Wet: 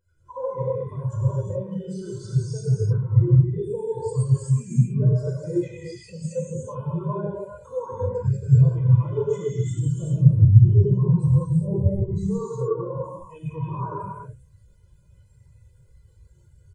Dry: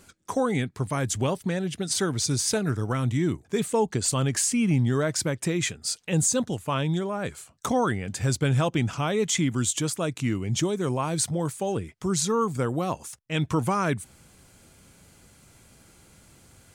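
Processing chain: zero-crossing step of -30.5 dBFS; 9.82–12.06 tone controls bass +11 dB, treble 0 dB; comb 2 ms, depth 66%; dynamic EQ 1000 Hz, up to +4 dB, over -42 dBFS, Q 2.5; compressor 12:1, threshold -20 dBFS, peak gain reduction 11.5 dB; non-linear reverb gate 0.45 s flat, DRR -8 dB; spectral expander 2.5:1

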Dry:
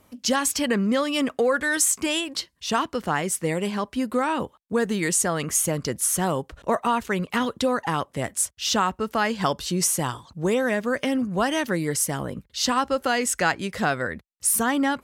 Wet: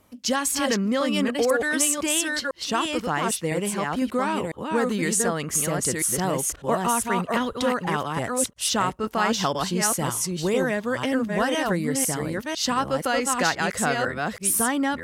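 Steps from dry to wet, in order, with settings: reverse delay 0.502 s, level -3 dB; gain -1.5 dB

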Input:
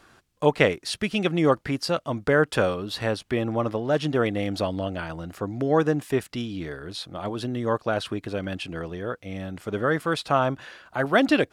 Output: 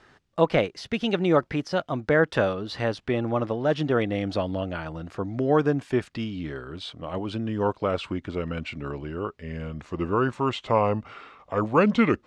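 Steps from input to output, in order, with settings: speed glide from 112% -> 76%; de-esser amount 65%; air absorption 92 m

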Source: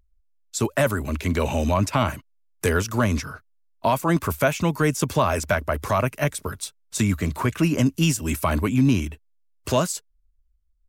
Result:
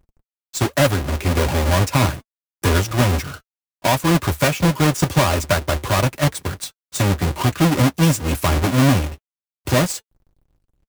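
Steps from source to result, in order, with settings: half-waves squared off; notch comb 220 Hz; gain +1 dB

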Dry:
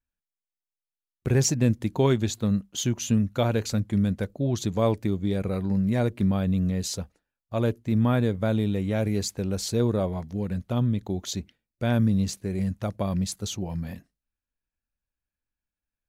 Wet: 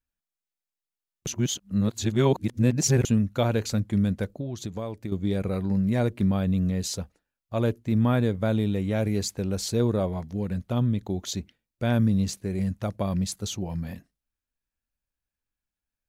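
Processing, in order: 1.27–3.05 reverse; 4.35–5.12 compressor 6:1, threshold -30 dBFS, peak gain reduction 12 dB

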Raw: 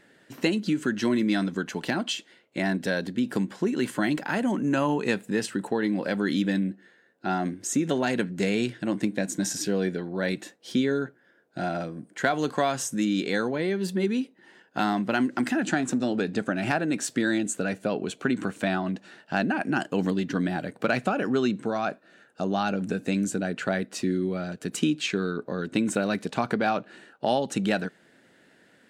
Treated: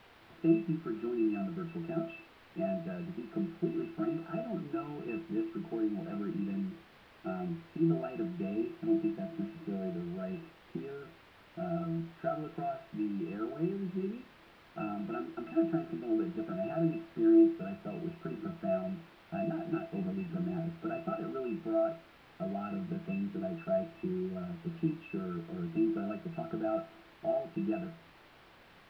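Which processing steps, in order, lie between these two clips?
HPF 270 Hz 6 dB/oct; low shelf 400 Hz +4.5 dB; sample leveller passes 1; octave resonator E, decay 0.18 s; requantised 8-bit, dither triangular; air absorption 420 m; on a send: reverb RT60 0.40 s, pre-delay 30 ms, DRR 11 dB

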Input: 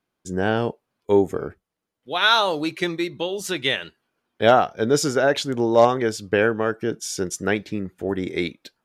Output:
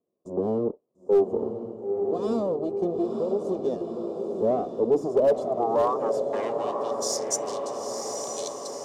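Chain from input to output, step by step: minimum comb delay 1.7 ms; graphic EQ 250/500/1000/2000/8000 Hz +11/+3/+10/-11/+10 dB; soft clip -8.5 dBFS, distortion -12 dB; band-pass sweep 350 Hz -> 5600 Hz, 5.03–7.2; on a send: diffused feedback echo 0.938 s, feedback 61%, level -7 dB; on the sum: overloaded stage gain 14.5 dB; in parallel at -1 dB: compressor, threshold -30 dBFS, peak gain reduction 12.5 dB; on the sum: bell 1800 Hz -12.5 dB 1.6 oct

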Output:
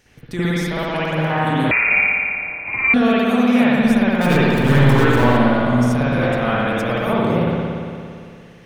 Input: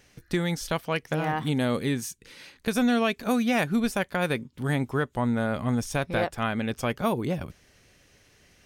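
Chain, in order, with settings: limiter -17 dBFS, peak gain reduction 5.5 dB; 4.21–5.37 power-law curve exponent 0.35; spring tank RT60 2.4 s, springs 57 ms, chirp 65 ms, DRR -10 dB; 1.71–2.94 inverted band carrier 2600 Hz

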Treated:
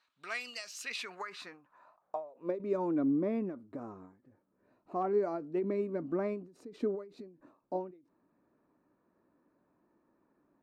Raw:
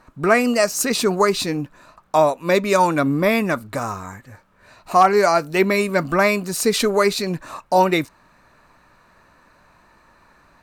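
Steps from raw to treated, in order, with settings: band-pass sweep 3600 Hz -> 310 Hz, 0.61–2.74; ending taper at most 130 dB/s; gain -7 dB

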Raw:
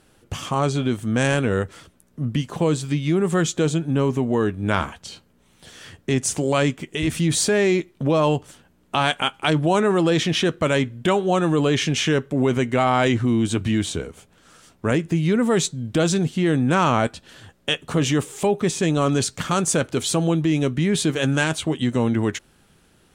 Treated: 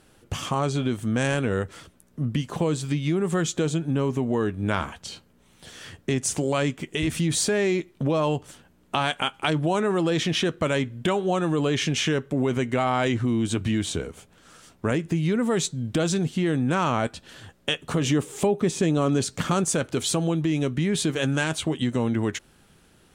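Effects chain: 18.04–19.64 bell 280 Hz +5 dB 2.7 oct; compressor 2:1, threshold -23 dBFS, peak gain reduction 7 dB

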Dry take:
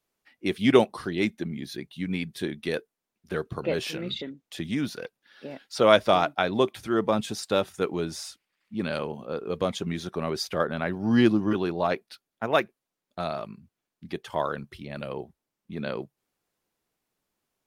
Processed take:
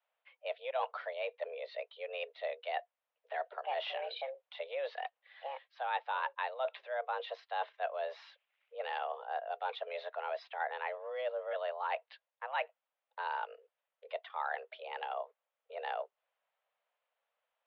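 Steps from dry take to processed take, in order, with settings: reverse; compressor 8:1, threshold -30 dBFS, peak gain reduction 18 dB; reverse; mistuned SSB +260 Hz 250–3200 Hz; gain -2 dB

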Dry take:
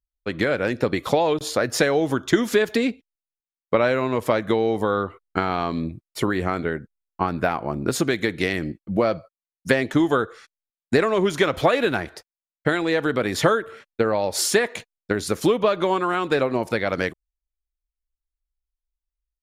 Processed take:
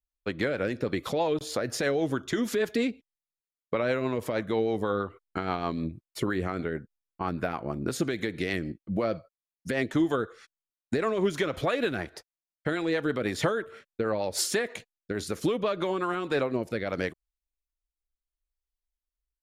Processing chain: limiter -11.5 dBFS, peak gain reduction 7 dB; rotary speaker horn 6.3 Hz, later 0.7 Hz, at 15.68; gain -3.5 dB

